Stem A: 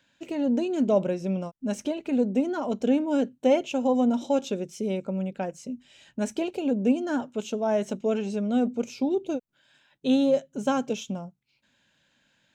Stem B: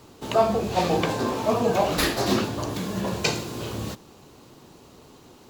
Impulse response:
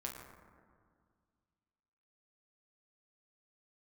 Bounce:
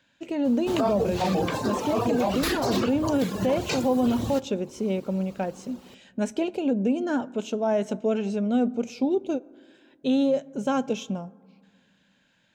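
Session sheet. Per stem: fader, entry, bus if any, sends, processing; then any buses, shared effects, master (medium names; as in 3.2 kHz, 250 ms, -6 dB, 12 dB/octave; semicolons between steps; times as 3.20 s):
+1.0 dB, 0.00 s, send -16.5 dB, none
+1.5 dB, 0.45 s, send -17.5 dB, reverb removal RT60 1 s; treble shelf 7.9 kHz +5 dB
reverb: on, RT60 1.9 s, pre-delay 7 ms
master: treble shelf 5.6 kHz -5.5 dB; peak limiter -15.5 dBFS, peak gain reduction 9.5 dB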